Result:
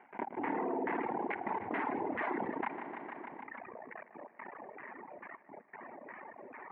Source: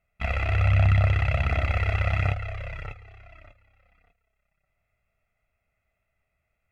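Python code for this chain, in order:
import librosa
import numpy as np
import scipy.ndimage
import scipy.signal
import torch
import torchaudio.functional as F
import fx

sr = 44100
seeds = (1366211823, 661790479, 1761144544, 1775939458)

y = fx.delta_mod(x, sr, bps=16000, step_db=-38.5)
y = fx.doppler_pass(y, sr, speed_mps=38, closest_m=2.1, pass_at_s=2.16)
y = fx.dereverb_blind(y, sr, rt60_s=0.53)
y = fx.leveller(y, sr, passes=5)
y = fx.step_gate(y, sr, bpm=123, pattern='.x.xxxxxxxx', floor_db=-24.0, edge_ms=4.5)
y = fx.fold_sine(y, sr, drive_db=10, ceiling_db=-29.5)
y = fx.filter_lfo_lowpass(y, sr, shape='saw_down', hz=2.3, low_hz=580.0, high_hz=1600.0, q=1.1)
y = fx.cabinet(y, sr, low_hz=240.0, low_slope=24, high_hz=2400.0, hz=(240.0, 370.0, 540.0, 900.0, 1300.0, 2000.0), db=(4, 4, -7, 9, -7, 8))
y = fx.echo_feedback(y, sr, ms=152, feedback_pct=59, wet_db=-14)
y = fx.dereverb_blind(y, sr, rt60_s=1.3)
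y = fx.env_flatten(y, sr, amount_pct=70)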